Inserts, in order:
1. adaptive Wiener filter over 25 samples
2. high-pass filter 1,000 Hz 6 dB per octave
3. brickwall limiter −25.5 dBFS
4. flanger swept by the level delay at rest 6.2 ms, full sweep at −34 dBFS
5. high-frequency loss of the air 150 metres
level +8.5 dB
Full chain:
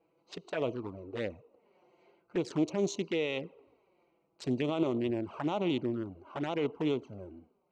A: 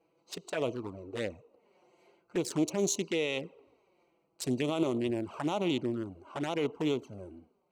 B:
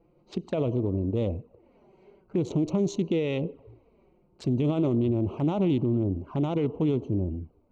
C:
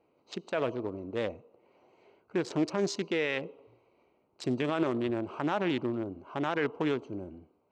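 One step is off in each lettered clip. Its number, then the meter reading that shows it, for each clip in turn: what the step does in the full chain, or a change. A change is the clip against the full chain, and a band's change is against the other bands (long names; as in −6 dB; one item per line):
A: 5, 8 kHz band +11.0 dB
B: 2, 125 Hz band +13.5 dB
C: 4, 2 kHz band +4.5 dB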